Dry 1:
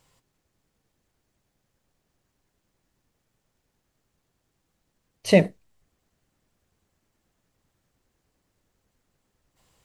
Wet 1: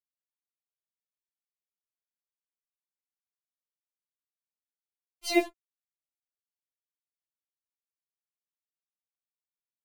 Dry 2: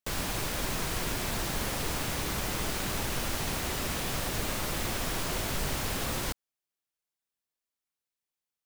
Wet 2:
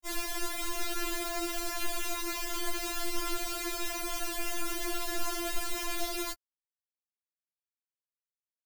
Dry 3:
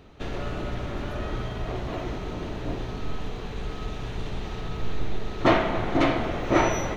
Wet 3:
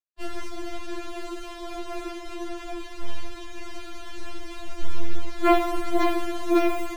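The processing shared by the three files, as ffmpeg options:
-af "acrusher=bits=5:mix=0:aa=0.5,afftfilt=real='re*4*eq(mod(b,16),0)':imag='im*4*eq(mod(b,16),0)':win_size=2048:overlap=0.75"

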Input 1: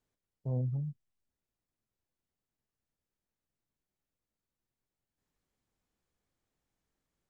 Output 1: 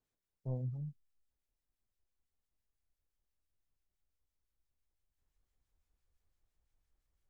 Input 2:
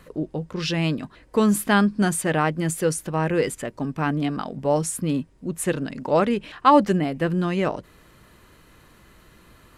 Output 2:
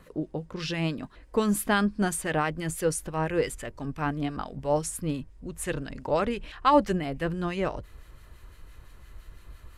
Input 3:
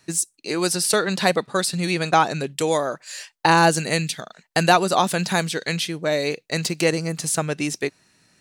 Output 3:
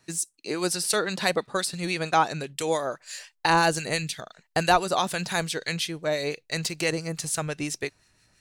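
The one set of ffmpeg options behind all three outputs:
-filter_complex "[0:a]acrossover=split=1400[a][b];[a]aeval=exprs='val(0)*(1-0.5/2+0.5/2*cos(2*PI*5.9*n/s))':c=same[c];[b]aeval=exprs='val(0)*(1-0.5/2-0.5/2*cos(2*PI*5.9*n/s))':c=same[d];[c][d]amix=inputs=2:normalize=0,asubboost=boost=8.5:cutoff=66,volume=-2dB"

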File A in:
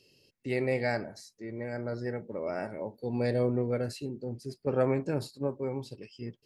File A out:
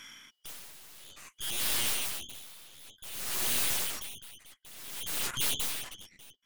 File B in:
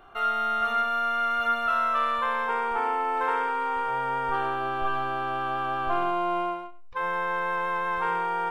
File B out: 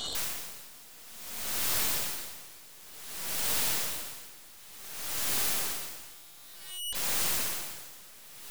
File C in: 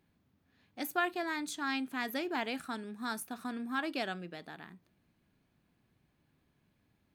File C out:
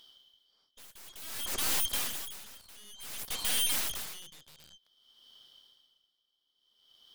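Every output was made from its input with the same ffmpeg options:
-af "afftfilt=real='real(if(lt(b,272),68*(eq(floor(b/68),0)*2+eq(floor(b/68),1)*3+eq(floor(b/68),2)*0+eq(floor(b/68),3)*1)+mod(b,68),b),0)':imag='imag(if(lt(b,272),68*(eq(floor(b/68),0)*2+eq(floor(b/68),1)*3+eq(floor(b/68),2)*0+eq(floor(b/68),3)*1)+mod(b,68),b),0)':win_size=2048:overlap=0.75,highpass=180,alimiter=limit=-22.5dB:level=0:latency=1:release=15,aeval=exprs='0.075*(cos(1*acos(clip(val(0)/0.075,-1,1)))-cos(1*PI/2))+0.00237*(cos(4*acos(clip(val(0)/0.075,-1,1)))-cos(4*PI/2))+0.00299*(cos(6*acos(clip(val(0)/0.075,-1,1)))-cos(6*PI/2))+0.000944*(cos(7*acos(clip(val(0)/0.075,-1,1)))-cos(7*PI/2))+0.0299*(cos(8*acos(clip(val(0)/0.075,-1,1)))-cos(8*PI/2))':c=same,aeval=exprs='0.133*sin(PI/2*8.91*val(0)/0.133)':c=same,aeval=exprs='val(0)*pow(10,-23*(0.5-0.5*cos(2*PI*0.55*n/s))/20)':c=same,volume=-6.5dB"

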